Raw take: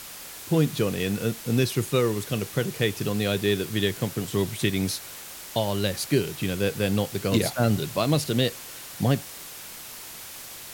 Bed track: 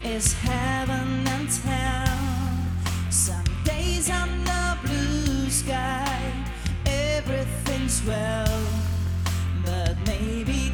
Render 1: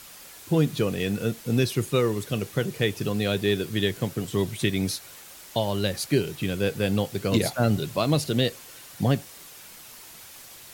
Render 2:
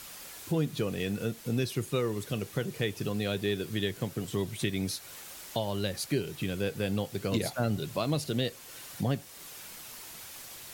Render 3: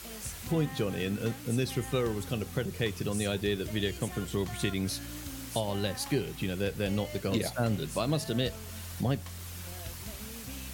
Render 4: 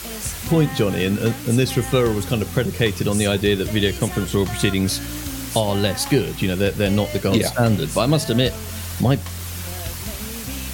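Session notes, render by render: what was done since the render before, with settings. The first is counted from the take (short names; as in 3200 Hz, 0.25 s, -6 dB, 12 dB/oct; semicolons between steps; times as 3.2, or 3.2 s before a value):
denoiser 6 dB, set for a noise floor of -41 dBFS
compressor 1.5:1, threshold -38 dBFS, peak gain reduction 8 dB
add bed track -18.5 dB
gain +12 dB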